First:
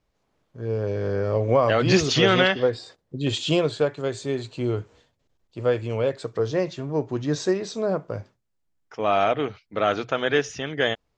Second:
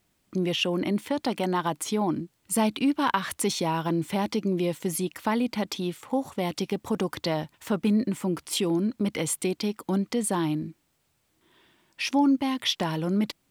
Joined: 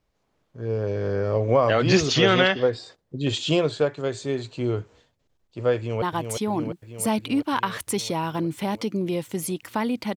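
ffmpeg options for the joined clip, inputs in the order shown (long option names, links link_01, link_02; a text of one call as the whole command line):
ffmpeg -i cue0.wav -i cue1.wav -filter_complex "[0:a]apad=whole_dur=10.16,atrim=end=10.16,atrim=end=6.022[link_01];[1:a]atrim=start=1.528:end=5.67[link_02];[link_01][link_02]acrossfade=duration=0.004:curve1=hsin:curve2=hsin,asplit=2[link_03][link_04];[link_04]afade=type=in:start_time=5.77:duration=0.01,afade=type=out:start_time=6.02:duration=0.01,aecho=0:1:350|700|1050|1400|1750|2100|2450|2800|3150|3500|3850|4200:0.530884|0.398163|0.298622|0.223967|0.167975|0.125981|0.094486|0.0708645|0.0531484|0.0398613|0.029896|0.022422[link_05];[link_03][link_05]amix=inputs=2:normalize=0" out.wav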